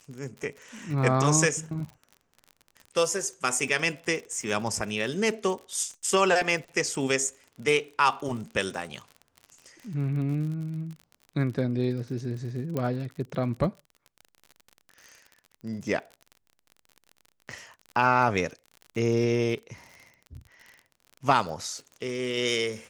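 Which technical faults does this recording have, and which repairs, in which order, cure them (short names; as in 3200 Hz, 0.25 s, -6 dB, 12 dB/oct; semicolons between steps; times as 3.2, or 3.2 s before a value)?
crackle 44/s -36 dBFS
12.77 pop -17 dBFS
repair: de-click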